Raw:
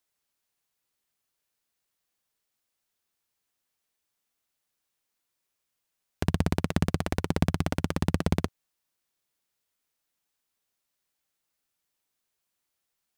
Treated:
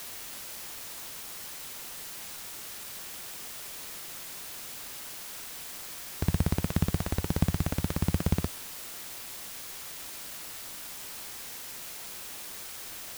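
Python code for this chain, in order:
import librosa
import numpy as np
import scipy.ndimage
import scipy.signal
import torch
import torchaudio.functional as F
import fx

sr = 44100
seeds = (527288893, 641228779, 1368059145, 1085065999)

y = fx.low_shelf(x, sr, hz=140.0, db=9.0)
y = fx.quant_dither(y, sr, seeds[0], bits=6, dither='triangular')
y = y * librosa.db_to_amplitude(-5.5)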